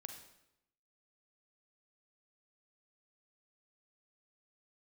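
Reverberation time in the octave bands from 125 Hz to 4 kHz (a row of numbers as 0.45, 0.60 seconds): 0.90, 0.95, 0.85, 0.80, 0.75, 0.75 seconds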